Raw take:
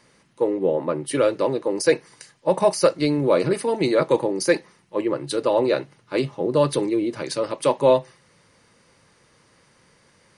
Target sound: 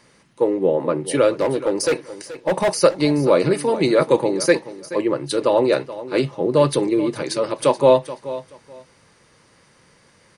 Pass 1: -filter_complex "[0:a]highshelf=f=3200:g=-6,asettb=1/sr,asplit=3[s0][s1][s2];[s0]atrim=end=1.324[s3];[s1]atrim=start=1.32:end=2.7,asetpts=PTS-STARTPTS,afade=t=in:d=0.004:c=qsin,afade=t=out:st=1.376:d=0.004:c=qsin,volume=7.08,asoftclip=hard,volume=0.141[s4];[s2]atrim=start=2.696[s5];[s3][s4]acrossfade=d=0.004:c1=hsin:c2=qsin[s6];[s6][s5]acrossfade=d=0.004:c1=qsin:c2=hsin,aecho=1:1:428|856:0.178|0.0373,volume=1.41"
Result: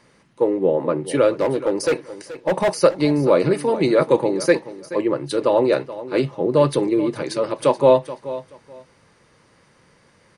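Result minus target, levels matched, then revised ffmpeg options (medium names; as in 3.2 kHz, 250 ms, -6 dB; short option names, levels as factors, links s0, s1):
8 kHz band -5.0 dB
-filter_complex "[0:a]asettb=1/sr,asplit=3[s0][s1][s2];[s0]atrim=end=1.324[s3];[s1]atrim=start=1.32:end=2.7,asetpts=PTS-STARTPTS,afade=t=in:d=0.004:c=qsin,afade=t=out:st=1.376:d=0.004:c=qsin,volume=7.08,asoftclip=hard,volume=0.141[s4];[s2]atrim=start=2.696[s5];[s3][s4]acrossfade=d=0.004:c1=hsin:c2=qsin[s6];[s6][s5]acrossfade=d=0.004:c1=qsin:c2=hsin,aecho=1:1:428|856:0.178|0.0373,volume=1.41"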